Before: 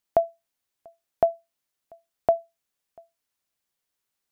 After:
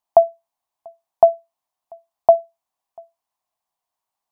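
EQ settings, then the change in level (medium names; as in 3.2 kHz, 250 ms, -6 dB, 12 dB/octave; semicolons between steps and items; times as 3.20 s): high-order bell 850 Hz +15 dB 1 oct; -4.5 dB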